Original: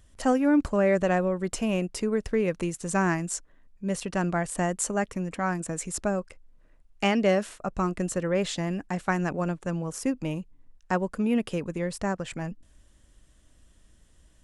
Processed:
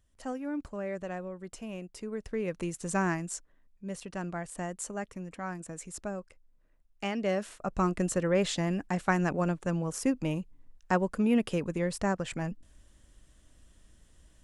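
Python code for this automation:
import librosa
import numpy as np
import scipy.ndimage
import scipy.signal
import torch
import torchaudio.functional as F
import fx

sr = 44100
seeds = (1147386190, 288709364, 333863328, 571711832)

y = fx.gain(x, sr, db=fx.line((1.85, -13.5), (2.83, -3.0), (3.95, -9.5), (7.11, -9.5), (7.82, -0.5)))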